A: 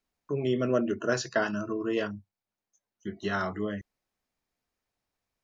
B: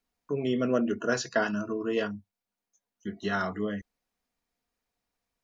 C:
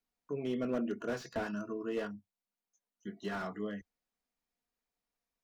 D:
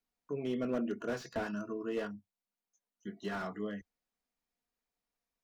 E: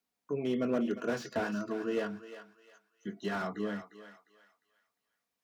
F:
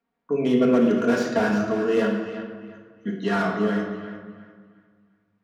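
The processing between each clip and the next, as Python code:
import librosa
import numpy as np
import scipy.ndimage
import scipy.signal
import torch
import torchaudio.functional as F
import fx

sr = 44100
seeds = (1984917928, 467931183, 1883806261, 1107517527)

y1 = x + 0.34 * np.pad(x, (int(4.2 * sr / 1000.0), 0))[:len(x)]
y2 = fx.peak_eq(y1, sr, hz=88.0, db=-14.5, octaves=0.34)
y2 = fx.slew_limit(y2, sr, full_power_hz=39.0)
y2 = y2 * librosa.db_to_amplitude(-7.0)
y3 = y2
y4 = scipy.signal.sosfilt(scipy.signal.butter(2, 95.0, 'highpass', fs=sr, output='sos'), y3)
y4 = fx.echo_thinned(y4, sr, ms=353, feedback_pct=36, hz=780.0, wet_db=-9.5)
y4 = y4 * librosa.db_to_amplitude(3.5)
y5 = fx.room_shoebox(y4, sr, seeds[0], volume_m3=1500.0, walls='mixed', distance_m=1.7)
y5 = fx.env_lowpass(y5, sr, base_hz=1900.0, full_db=-26.0)
y5 = y5 * librosa.db_to_amplitude(8.0)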